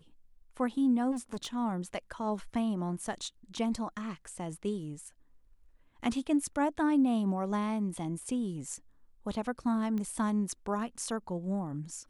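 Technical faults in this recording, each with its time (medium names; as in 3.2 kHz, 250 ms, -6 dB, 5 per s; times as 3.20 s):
1.11–1.56 s: clipped -32.5 dBFS
9.98 s: pop -25 dBFS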